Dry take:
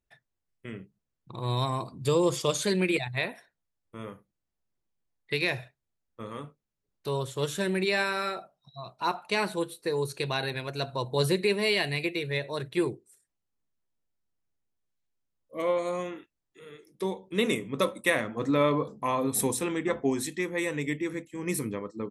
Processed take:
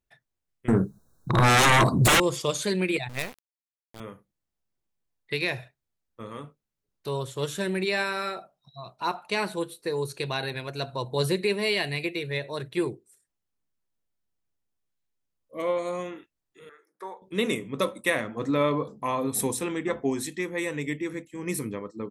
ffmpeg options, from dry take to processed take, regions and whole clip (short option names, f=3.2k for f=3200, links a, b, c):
-filter_complex "[0:a]asettb=1/sr,asplit=3[a][b][c];[a]atrim=end=0.684[d];[b]atrim=start=0.68:end=2.2,asetpts=PTS-STARTPTS,afade=t=in:d=0.004:c=qsin,afade=t=out:st=1.516:d=0.004:c=qsin,asuperstop=centerf=2500:order=20:qfactor=1.2,aeval=exprs='0.188*sin(PI/2*7.94*val(0)/0.188)':c=same,equalizer=f=4.7k:t=o:w=0.27:g=-10[e];[c]atrim=start=2.196[f];[d][e]acrossfade=d=0.004:c1=hsin:c2=qsin[g];[g][f]acrossfade=d=0.004:c1=qsin:c2=hsin,asettb=1/sr,asplit=3[h][i][j];[h]atrim=end=3.094[k];[i]atrim=start=3.09:end=4,asetpts=PTS-STARTPTS,afade=t=in:d=0.004:c=qsin,afade=t=out:st=0.906:d=0.004:c=qsin,highpass=51,acrusher=bits=4:dc=4:mix=0:aa=0.000001,asoftclip=type=hard:threshold=-14.5dB[l];[j]atrim=start=3.996[m];[k][l]acrossfade=d=0.004:c1=hsin:c2=qsin[n];[n][m]acrossfade=d=0.004:c1=qsin:c2=hsin,asettb=1/sr,asplit=3[o][p][q];[o]atrim=end=16.694[r];[p]atrim=start=16.69:end=17.22,asetpts=PTS-STARTPTS,afade=t=in:d=0.004:c=qsin,afade=t=out:st=0.526:d=0.004:c=qsin,highpass=760,highshelf=f=2.1k:t=q:w=3:g=-10.5[s];[q]atrim=start=17.216[t];[r][s]acrossfade=d=0.004:c1=hsin:c2=qsin[u];[u][t]acrossfade=d=0.004:c1=qsin:c2=hsin"